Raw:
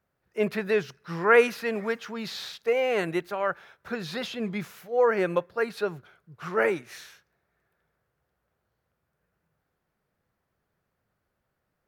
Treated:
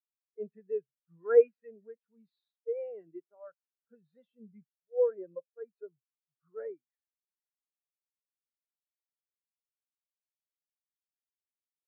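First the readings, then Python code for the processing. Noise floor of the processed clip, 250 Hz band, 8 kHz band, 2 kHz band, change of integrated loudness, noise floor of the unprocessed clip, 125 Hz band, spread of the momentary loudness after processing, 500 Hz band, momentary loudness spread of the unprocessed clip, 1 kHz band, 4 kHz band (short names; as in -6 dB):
under -85 dBFS, -21.5 dB, under -30 dB, under -20 dB, -4.5 dB, -79 dBFS, under -25 dB, 24 LU, -5.5 dB, 15 LU, -21.5 dB, under -40 dB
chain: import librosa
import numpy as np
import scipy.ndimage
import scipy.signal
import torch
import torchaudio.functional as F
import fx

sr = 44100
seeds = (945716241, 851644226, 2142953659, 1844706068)

y = fx.cvsd(x, sr, bps=32000)
y = fx.spectral_expand(y, sr, expansion=2.5)
y = y * librosa.db_to_amplitude(-1.5)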